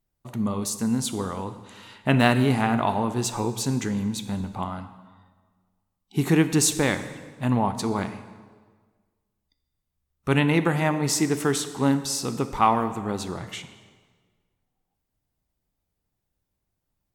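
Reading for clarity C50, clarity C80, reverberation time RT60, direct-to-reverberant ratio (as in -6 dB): 11.5 dB, 13.0 dB, 1.6 s, 10.0 dB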